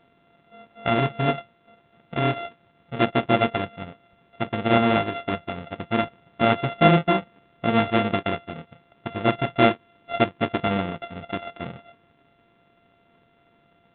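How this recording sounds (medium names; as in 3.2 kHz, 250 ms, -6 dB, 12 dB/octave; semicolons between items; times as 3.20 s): a buzz of ramps at a fixed pitch in blocks of 64 samples; A-law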